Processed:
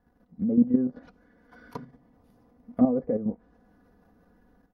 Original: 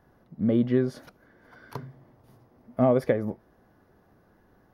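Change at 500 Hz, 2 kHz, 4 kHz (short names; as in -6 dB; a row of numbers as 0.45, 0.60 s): -6.0 dB, under -10 dB, n/a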